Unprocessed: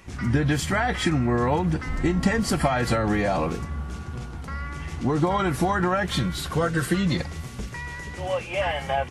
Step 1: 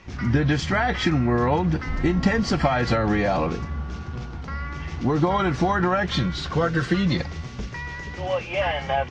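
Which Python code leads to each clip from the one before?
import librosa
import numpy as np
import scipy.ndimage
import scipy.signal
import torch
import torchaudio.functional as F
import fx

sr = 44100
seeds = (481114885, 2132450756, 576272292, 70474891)

y = scipy.signal.sosfilt(scipy.signal.butter(6, 6100.0, 'lowpass', fs=sr, output='sos'), x)
y = y * 10.0 ** (1.5 / 20.0)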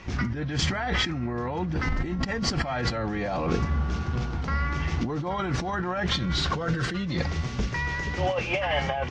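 y = fx.over_compress(x, sr, threshold_db=-27.0, ratio=-1.0)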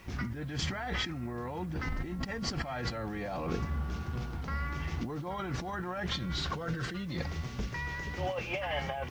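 y = fx.quant_dither(x, sr, seeds[0], bits=10, dither='triangular')
y = y * 10.0 ** (-8.0 / 20.0)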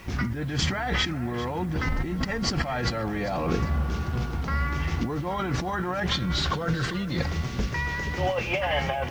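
y = fx.echo_feedback(x, sr, ms=396, feedback_pct=40, wet_db=-15.5)
y = y * 10.0 ** (8.0 / 20.0)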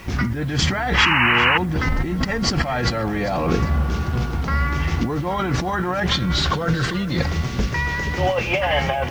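y = fx.spec_paint(x, sr, seeds[1], shape='noise', start_s=0.97, length_s=0.61, low_hz=810.0, high_hz=3000.0, level_db=-23.0)
y = y * 10.0 ** (6.0 / 20.0)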